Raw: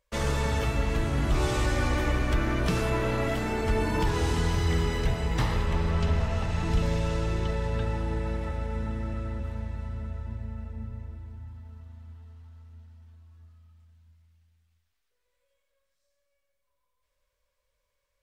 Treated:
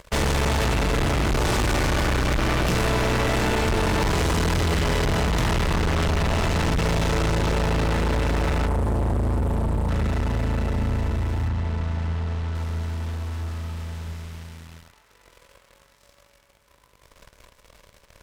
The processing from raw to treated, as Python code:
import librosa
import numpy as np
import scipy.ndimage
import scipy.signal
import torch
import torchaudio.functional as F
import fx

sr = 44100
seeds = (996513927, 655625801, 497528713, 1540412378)

p1 = fx.bin_compress(x, sr, power=0.6)
p2 = fx.ellip_bandstop(p1, sr, low_hz=1000.0, high_hz=8200.0, order=3, stop_db=40, at=(8.67, 9.89))
p3 = fx.leveller(p2, sr, passes=3)
p4 = fx.air_absorb(p3, sr, metres=71.0, at=(11.48, 12.55))
p5 = p4 + fx.echo_wet_bandpass(p4, sr, ms=260, feedback_pct=85, hz=1500.0, wet_db=-20.0, dry=0)
y = fx.clip_asym(p5, sr, top_db=-26.5, bottom_db=-16.5)